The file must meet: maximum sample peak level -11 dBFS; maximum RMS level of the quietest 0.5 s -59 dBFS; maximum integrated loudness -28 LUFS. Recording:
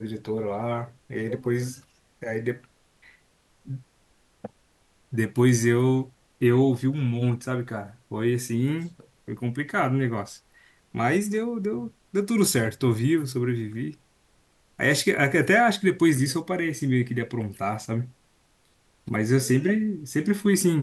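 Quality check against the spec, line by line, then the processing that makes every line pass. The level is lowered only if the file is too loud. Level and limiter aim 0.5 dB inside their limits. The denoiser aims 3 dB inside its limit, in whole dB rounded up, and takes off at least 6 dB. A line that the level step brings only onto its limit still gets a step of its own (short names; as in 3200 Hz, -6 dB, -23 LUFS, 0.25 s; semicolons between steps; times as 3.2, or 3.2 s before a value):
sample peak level -7.0 dBFS: fail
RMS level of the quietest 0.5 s -64 dBFS: OK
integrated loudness -25.0 LUFS: fail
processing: gain -3.5 dB; limiter -11.5 dBFS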